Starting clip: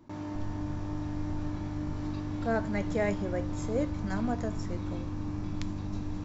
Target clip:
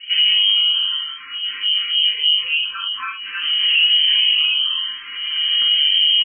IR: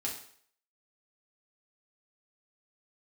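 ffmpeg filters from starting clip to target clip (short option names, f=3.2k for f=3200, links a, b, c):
-filter_complex "[0:a]aecho=1:1:6.1:0.64,acompressor=threshold=-30dB:ratio=10,flanger=delay=15.5:depth=6:speed=1.6,asettb=1/sr,asplit=3[a][b][c];[a]atrim=end=1.104[d];[b]atrim=start=1.1:end=3.42,asetpts=PTS-STARTPTS,afade=t=in:d=0.004:c=qsin,afade=t=out:st=2.316:d=0.004:c=qsin,acrossover=split=570[e][f];[e]aeval=exprs='val(0)*(1-1/2+1/2*cos(2*PI*3.4*n/s))':c=same[g];[f]aeval=exprs='val(0)*(1-1/2-1/2*cos(2*PI*3.4*n/s))':c=same[h];[g][h]amix=inputs=2:normalize=0[i];[c]atrim=start=3.416[j];[d][i]acrossfade=d=0.004:c1=hsin:c2=qsin[k];[k][j]acrossfade=d=0.004:c1=qsin:c2=hsin[l];[1:a]atrim=start_sample=2205,afade=t=out:st=0.15:d=0.01,atrim=end_sample=7056[m];[l][m]afir=irnorm=-1:irlink=0,lowpass=f=2.7k:t=q:w=0.5098,lowpass=f=2.7k:t=q:w=0.6013,lowpass=f=2.7k:t=q:w=0.9,lowpass=f=2.7k:t=q:w=2.563,afreqshift=-3200,asuperstop=centerf=710:order=20:qfactor=1.5,alimiter=level_in=29dB:limit=-1dB:release=50:level=0:latency=1,asplit=2[n][o];[o]afreqshift=0.52[p];[n][p]amix=inputs=2:normalize=1,volume=-6dB"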